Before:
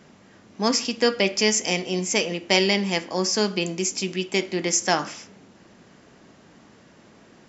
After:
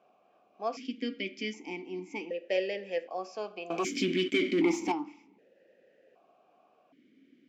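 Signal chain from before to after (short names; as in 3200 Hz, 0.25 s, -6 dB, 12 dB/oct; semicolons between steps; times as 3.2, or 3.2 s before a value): bell 440 Hz +5.5 dB 1.5 oct; 3.7–4.92 sample leveller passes 5; vowel sequencer 1.3 Hz; gain -3.5 dB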